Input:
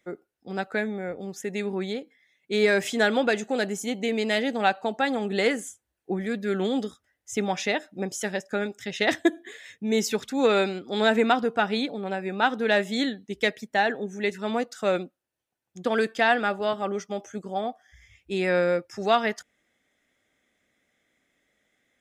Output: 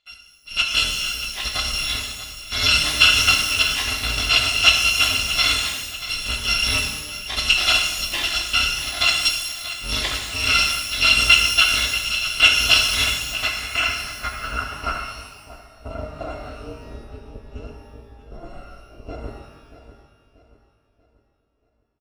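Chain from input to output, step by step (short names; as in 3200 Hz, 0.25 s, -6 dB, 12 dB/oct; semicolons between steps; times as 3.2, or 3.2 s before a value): FFT order left unsorted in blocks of 256 samples; AGC gain up to 13.5 dB; on a send: feedback echo 0.635 s, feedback 39%, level -13 dB; on the sum: low-pass sweep 3300 Hz -> 450 Hz, 13.01–16.68; shimmer reverb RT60 1.1 s, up +12 st, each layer -8 dB, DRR 1.5 dB; gain -1.5 dB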